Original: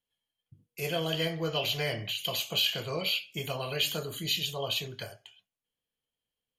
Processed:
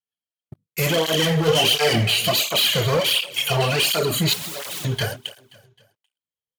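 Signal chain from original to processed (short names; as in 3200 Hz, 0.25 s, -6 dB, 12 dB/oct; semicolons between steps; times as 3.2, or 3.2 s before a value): moving spectral ripple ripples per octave 1.1, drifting -0.55 Hz, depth 6 dB; 2.99–3.5 HPF 340 Hz -> 1100 Hz 24 dB/oct; sample leveller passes 5; 1.46–2.24 doubler 18 ms -5 dB; 4.33–4.85 wrapped overs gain 26 dB; feedback echo 0.262 s, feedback 44%, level -20 dB; tape flanging out of phase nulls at 1.4 Hz, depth 4.1 ms; gain +2.5 dB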